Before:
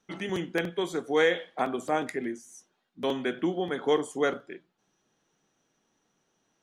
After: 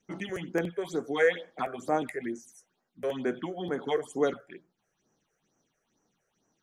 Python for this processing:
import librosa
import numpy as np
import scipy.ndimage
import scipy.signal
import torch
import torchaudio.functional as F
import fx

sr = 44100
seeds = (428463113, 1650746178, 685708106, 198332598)

y = fx.phaser_stages(x, sr, stages=6, low_hz=230.0, high_hz=3700.0, hz=2.2, feedback_pct=25)